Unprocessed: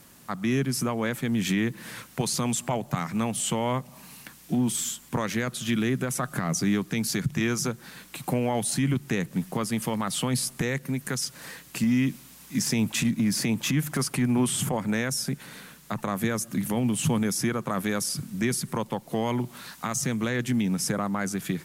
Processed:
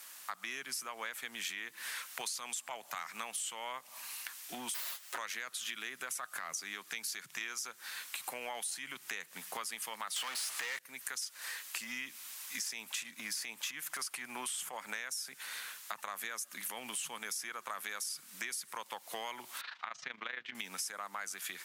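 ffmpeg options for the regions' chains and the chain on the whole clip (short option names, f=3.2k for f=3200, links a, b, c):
-filter_complex "[0:a]asettb=1/sr,asplit=3[a][b][c];[a]atrim=end=4.744[d];[b]atrim=start=4.74:end=5.18,asetpts=PTS-STARTPTS,afade=t=in:d=0.004:c=qsin,afade=t=out:st=0.436:d=0.004:c=qsin,aeval=exprs='abs(val(0))':c=same,aecho=1:1:7.3:0.97,atrim=end_sample=19404[e];[c]atrim=start=5.176[f];[d][e]acrossfade=d=0.004:c1=hsin:c2=qsin[g];[g][f]acrossfade=d=0.004:c1=qsin:c2=hsin,asettb=1/sr,asplit=3[h][i][j];[h]atrim=end=10.164[k];[i]atrim=start=10.16:end=10.79,asetpts=PTS-STARTPTS,afade=t=in:d=0.004:c=qsin,afade=t=out:st=0.626:d=0.004:c=qsin,highpass=100,asplit=2[l][m];[m]highpass=f=720:p=1,volume=31dB,asoftclip=type=tanh:threshold=-15dB[n];[l][n]amix=inputs=2:normalize=0,lowpass=f=4.8k:p=1,volume=-6dB[o];[j]atrim=start=10.786[p];[k][o]acrossfade=d=0.004:c1=hsin:c2=qsin[q];[q][p]acrossfade=d=0.004:c1=qsin:c2=hsin,asettb=1/sr,asplit=3[r][s][t];[r]atrim=end=19.614[u];[s]atrim=start=19.61:end=20.55,asetpts=PTS-STARTPTS,afade=t=in:d=0.004:c=qsin,afade=t=out:st=0.936:d=0.004:c=qsin,lowpass=f=3.7k:w=0.5412,lowpass=f=3.7k:w=1.3066,tremolo=f=26:d=0.75[v];[t]atrim=start=20.546[w];[u][v]acrossfade=d=0.004:c1=hsin:c2=qsin[x];[x][w]acrossfade=d=0.004:c1=qsin:c2=hsin,highpass=1.2k,acompressor=threshold=-41dB:ratio=6,volume=3.5dB"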